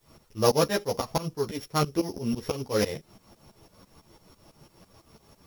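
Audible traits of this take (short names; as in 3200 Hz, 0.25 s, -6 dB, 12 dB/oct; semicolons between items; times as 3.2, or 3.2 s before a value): a buzz of ramps at a fixed pitch in blocks of 8 samples; tremolo saw up 6 Hz, depth 95%; a quantiser's noise floor 12-bit, dither triangular; a shimmering, thickened sound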